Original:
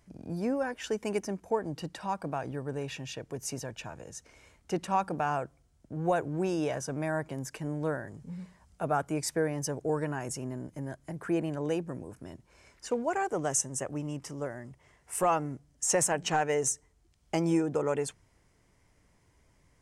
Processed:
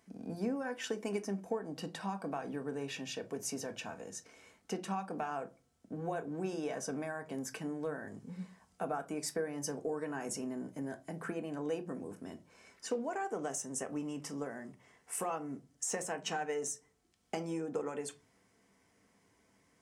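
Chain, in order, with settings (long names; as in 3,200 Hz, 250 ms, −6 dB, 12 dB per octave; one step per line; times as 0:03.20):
de-essing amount 50%
high-pass filter 140 Hz 12 dB per octave
downward compressor 6 to 1, threshold −33 dBFS, peak gain reduction 11 dB
on a send: convolution reverb RT60 0.30 s, pre-delay 3 ms, DRR 6 dB
on the sum: level −1.5 dB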